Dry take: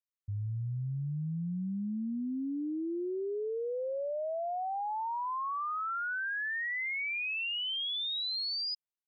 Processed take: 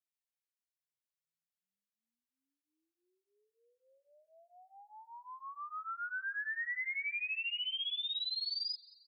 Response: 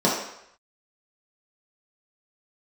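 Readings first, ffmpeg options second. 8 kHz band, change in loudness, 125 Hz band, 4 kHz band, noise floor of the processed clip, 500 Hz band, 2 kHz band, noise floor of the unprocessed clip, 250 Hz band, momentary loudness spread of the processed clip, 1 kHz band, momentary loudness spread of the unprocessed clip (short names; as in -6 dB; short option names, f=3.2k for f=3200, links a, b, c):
n/a, -2.0 dB, under -40 dB, -3.0 dB, under -85 dBFS, -34.5 dB, -3.5 dB, under -85 dBFS, under -40 dB, 14 LU, -12.0 dB, 4 LU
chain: -filter_complex "[0:a]highpass=f=1.4k:w=0.5412,highpass=f=1.4k:w=1.3066,asplit=2[a][b];[b]aecho=0:1:190|380|570|760:0.0708|0.0404|0.023|0.0131[c];[a][c]amix=inputs=2:normalize=0,asplit=2[d][e];[e]adelay=9.3,afreqshift=-1.5[f];[d][f]amix=inputs=2:normalize=1"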